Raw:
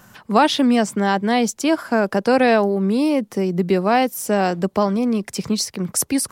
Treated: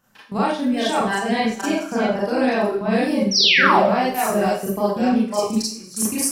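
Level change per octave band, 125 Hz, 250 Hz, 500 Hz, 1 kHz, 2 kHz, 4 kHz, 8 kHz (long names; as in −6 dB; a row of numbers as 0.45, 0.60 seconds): −3.5, −2.5, −2.0, 0.0, +3.5, +6.0, −0.5 decibels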